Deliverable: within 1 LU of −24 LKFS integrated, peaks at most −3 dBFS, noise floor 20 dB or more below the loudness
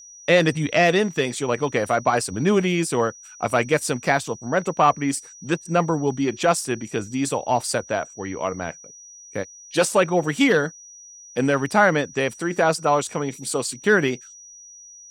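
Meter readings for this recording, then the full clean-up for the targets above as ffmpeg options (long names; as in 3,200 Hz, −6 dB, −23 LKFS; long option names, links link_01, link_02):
interfering tone 5,800 Hz; level of the tone −42 dBFS; integrated loudness −22.0 LKFS; sample peak −3.5 dBFS; target loudness −24.0 LKFS
→ -af "bandreject=frequency=5800:width=30"
-af "volume=-2dB"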